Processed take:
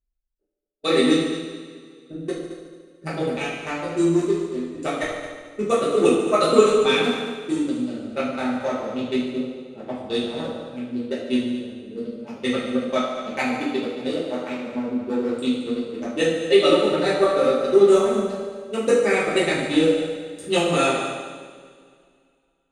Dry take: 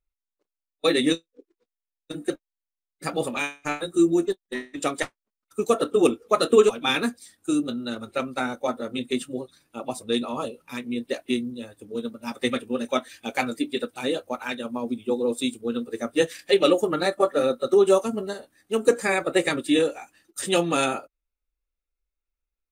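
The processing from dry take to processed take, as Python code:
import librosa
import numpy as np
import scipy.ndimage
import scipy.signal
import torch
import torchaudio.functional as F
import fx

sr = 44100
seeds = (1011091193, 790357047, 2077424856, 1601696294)

p1 = fx.wiener(x, sr, points=41)
p2 = scipy.signal.sosfilt(scipy.signal.butter(2, 10000.0, 'lowpass', fs=sr, output='sos'), p1)
p3 = fx.notch(p2, sr, hz=1700.0, q=19.0)
p4 = p3 + fx.echo_heads(p3, sr, ms=73, heads='all three', feedback_pct=43, wet_db=-13.0, dry=0)
p5 = fx.rev_double_slope(p4, sr, seeds[0], early_s=0.66, late_s=2.4, knee_db=-17, drr_db=-7.5)
y = F.gain(torch.from_numpy(p5), -4.0).numpy()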